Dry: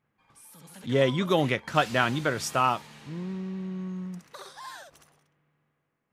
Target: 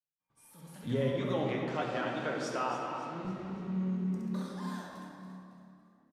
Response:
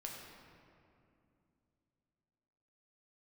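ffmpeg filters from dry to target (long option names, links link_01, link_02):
-filter_complex "[0:a]agate=range=-33dB:threshold=-51dB:ratio=3:detection=peak,tiltshelf=frequency=970:gain=3,alimiter=limit=-18dB:level=0:latency=1:release=422,asettb=1/sr,asplit=3[link_01][link_02][link_03];[link_01]atrim=end=1.024[link_04];[link_02]atrim=start=1.02:end=3.25,asetpts=PTS-STARTPTS,afade=type=in:duration=0.004:curve=qsin,afade=type=out:start_time=2.226:duration=0.004:curve=qsin,highpass=280,lowpass=6700[link_05];[link_03]atrim=start=3.246[link_06];[link_04][link_05]acrossfade=duration=0.004:curve1=hsin:curve2=qsin[link_07];[link_07][link_06]acrossfade=duration=0.004:curve1=qsin:curve2=hsin,asplit=5[link_08][link_09][link_10][link_11][link_12];[link_09]adelay=279,afreqshift=35,volume=-11dB[link_13];[link_10]adelay=558,afreqshift=70,volume=-18.5dB[link_14];[link_11]adelay=837,afreqshift=105,volume=-26.1dB[link_15];[link_12]adelay=1116,afreqshift=140,volume=-33.6dB[link_16];[link_08][link_13][link_14][link_15][link_16]amix=inputs=5:normalize=0[link_17];[1:a]atrim=start_sample=2205[link_18];[link_17][link_18]afir=irnorm=-1:irlink=0"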